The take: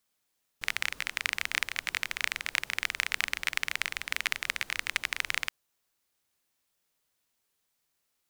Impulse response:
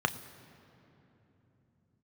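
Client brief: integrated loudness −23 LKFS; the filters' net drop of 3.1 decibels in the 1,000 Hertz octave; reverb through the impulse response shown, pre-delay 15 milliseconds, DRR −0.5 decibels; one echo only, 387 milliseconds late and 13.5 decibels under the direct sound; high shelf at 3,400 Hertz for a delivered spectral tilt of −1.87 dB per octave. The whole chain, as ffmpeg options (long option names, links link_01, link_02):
-filter_complex "[0:a]equalizer=frequency=1000:width_type=o:gain=-3.5,highshelf=frequency=3400:gain=-5.5,aecho=1:1:387:0.211,asplit=2[link_01][link_02];[1:a]atrim=start_sample=2205,adelay=15[link_03];[link_02][link_03]afir=irnorm=-1:irlink=0,volume=-9dB[link_04];[link_01][link_04]amix=inputs=2:normalize=0,volume=8dB"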